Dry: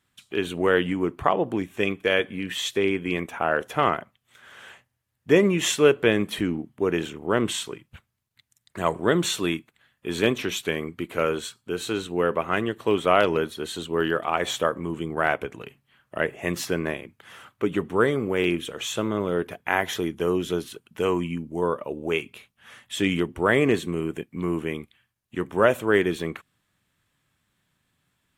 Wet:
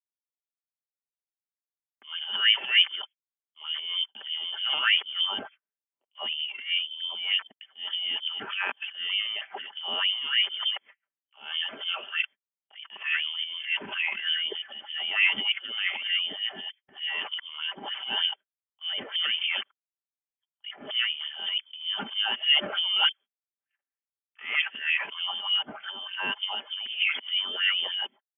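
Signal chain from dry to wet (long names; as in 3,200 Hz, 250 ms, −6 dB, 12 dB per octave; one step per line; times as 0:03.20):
played backwards from end to start
noise gate −39 dBFS, range −58 dB
comb filter 5.2 ms, depth 52%
transient designer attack −10 dB, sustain +10 dB
voice inversion scrambler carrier 3,300 Hz
auto-filter high-pass sine 3.3 Hz 240–2,600 Hz
level −8.5 dB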